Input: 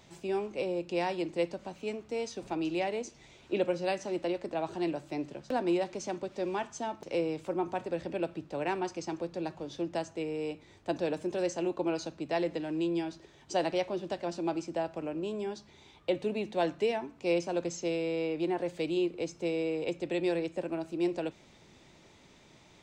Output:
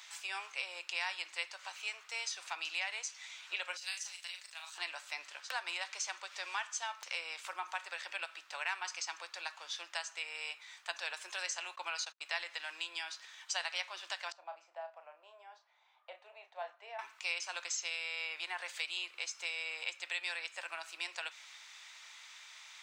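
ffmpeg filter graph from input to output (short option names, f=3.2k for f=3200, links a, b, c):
-filter_complex "[0:a]asettb=1/sr,asplit=3[a][b][c];[a]atrim=end=3.774[d];[b]atrim=start=3.77:end=4.78,asetpts=PTS-STARTPTS,afade=t=in:d=0.004:c=qsin,afade=t=out:st=1.006:d=0.004:c=qsin,aderivative,asplit=2[e][f];[f]adelay=39,volume=-5.5dB[g];[e][g]amix=inputs=2:normalize=0,atrim=end_sample=44541[h];[c]atrim=start=4.776[i];[d][h]acrossfade=d=0.004:c1=hsin:c2=qsin[j];[j][i]acrossfade=d=0.004:c1=qsin:c2=hsin,asettb=1/sr,asplit=3[k][l][m];[k]atrim=end=11.604[n];[l]atrim=start=11.6:end=12.26,asetpts=PTS-STARTPTS,afade=t=in:d=0.004:c=qsin,afade=t=out:st=0.656:d=0.004:c=qsin,highpass=f=230:p=1,agate=range=-41dB:threshold=-45dB:ratio=16:release=100:detection=peak[o];[m]atrim=start=12.256[p];[n][o]acrossfade=d=0.004:c1=hsin:c2=qsin[q];[q][p]acrossfade=d=0.004:c1=qsin:c2=hsin,asettb=1/sr,asplit=3[r][s][t];[r]atrim=end=14.324[u];[s]atrim=start=14.32:end=16.99,asetpts=PTS-STARTPTS,afade=t=in:d=0.004:c=qsin,afade=t=out:st=2.666:d=0.004:c=qsin,bandpass=f=650:t=q:w=3.6,asplit=2[v][w];[w]adelay=34,volume=-8dB[x];[v][x]amix=inputs=2:normalize=0,atrim=end_sample=117747[y];[t]atrim=start=16.986[z];[u][y]acrossfade=d=0.004:c1=hsin:c2=qsin[aa];[aa][z]acrossfade=d=0.004:c1=qsin:c2=hsin,highpass=f=1.2k:w=0.5412,highpass=f=1.2k:w=1.3066,acompressor=threshold=-47dB:ratio=2,volume=9.5dB"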